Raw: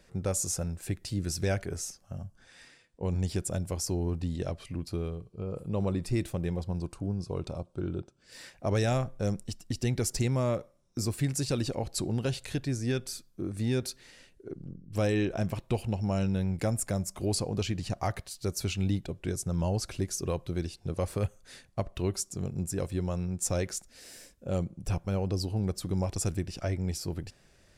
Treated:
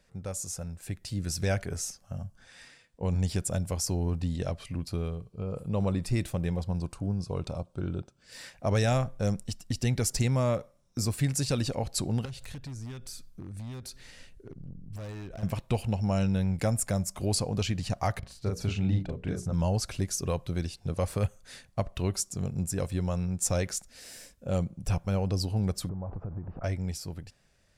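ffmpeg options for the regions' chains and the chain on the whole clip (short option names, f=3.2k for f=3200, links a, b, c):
-filter_complex "[0:a]asettb=1/sr,asplit=3[a][b][c];[a]atrim=end=12.254[d];[b]atrim=start=12.25:end=15.43,asetpts=PTS-STARTPTS,afade=t=in:d=0.004:c=qsin,afade=t=out:st=3.176:d=0.004:c=qsin,lowshelf=f=110:g=10.5,acompressor=threshold=-42dB:ratio=3:attack=3.2:release=140:knee=1:detection=peak,aeval=exprs='0.0178*(abs(mod(val(0)/0.0178+3,4)-2)-1)':c=same[e];[c]atrim=start=15.426[f];[d][e]acrossfade=d=0.004:c1=hsin:c2=qsin[g];[g][f]acrossfade=d=0.004:c1=qsin:c2=hsin,asettb=1/sr,asplit=3[h][i][j];[h]atrim=end=18.194[k];[i]atrim=start=18.19:end=19.53,asetpts=PTS-STARTPTS,afade=t=in:d=0.004:c=qsin,afade=t=out:st=1.336:d=0.004:c=qsin,lowpass=f=1.5k:p=1,bandreject=f=60:t=h:w=6,bandreject=f=120:t=h:w=6,bandreject=f=180:t=h:w=6,bandreject=f=240:t=h:w=6,bandreject=f=300:t=h:w=6,bandreject=f=360:t=h:w=6,bandreject=f=420:t=h:w=6,bandreject=f=480:t=h:w=6,bandreject=f=540:t=h:w=6,asplit=2[l][m];[m]adelay=38,volume=-3dB[n];[l][n]amix=inputs=2:normalize=0,atrim=end_sample=59094[o];[j]atrim=start=19.526[p];[k][o]acrossfade=d=0.004:c1=hsin:c2=qsin[q];[q][p]acrossfade=d=0.004:c1=qsin:c2=hsin,asettb=1/sr,asplit=3[r][s][t];[r]atrim=end=25.894[u];[s]atrim=start=25.89:end=26.64,asetpts=PTS-STARTPTS,afade=t=in:d=0.004:c=qsin,afade=t=out:st=0.746:d=0.004:c=qsin,aeval=exprs='val(0)+0.5*0.01*sgn(val(0))':c=same,lowpass=f=1.2k:w=0.5412,lowpass=f=1.2k:w=1.3066,acompressor=threshold=-34dB:ratio=6:attack=3.2:release=140:knee=1:detection=peak[v];[t]atrim=start=26.636[w];[u][v]acrossfade=d=0.004:c1=hsin:c2=qsin[x];[x][w]acrossfade=d=0.004:c1=qsin:c2=hsin,equalizer=f=350:w=2.6:g=-6.5,dynaudnorm=f=130:g=17:m=8dB,volume=-5.5dB"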